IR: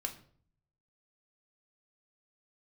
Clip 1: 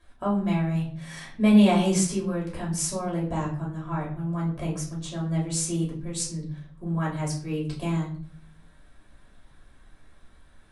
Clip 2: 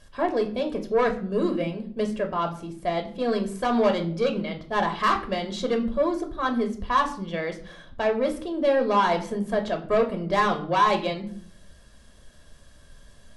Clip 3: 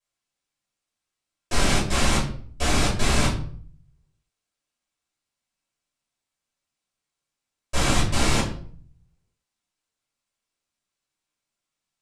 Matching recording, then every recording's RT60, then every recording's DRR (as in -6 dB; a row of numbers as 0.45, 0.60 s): 2; 0.50, 0.55, 0.50 s; -5.0, 4.0, -10.5 dB